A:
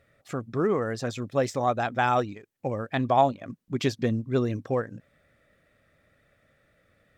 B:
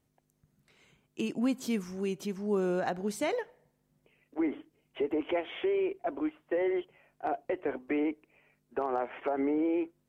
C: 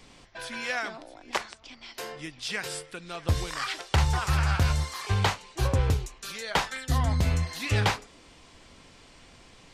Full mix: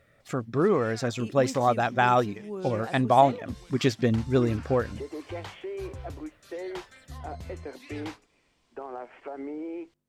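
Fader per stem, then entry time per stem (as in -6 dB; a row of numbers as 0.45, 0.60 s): +2.0, -7.0, -17.0 dB; 0.00, 0.00, 0.20 s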